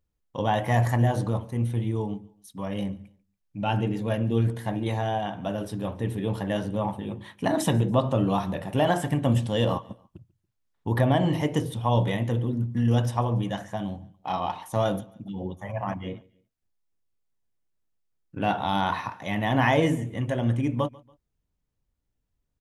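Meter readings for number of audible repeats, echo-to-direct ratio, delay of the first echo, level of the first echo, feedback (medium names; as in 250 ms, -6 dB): 2, -23.0 dB, 142 ms, -23.5 dB, 37%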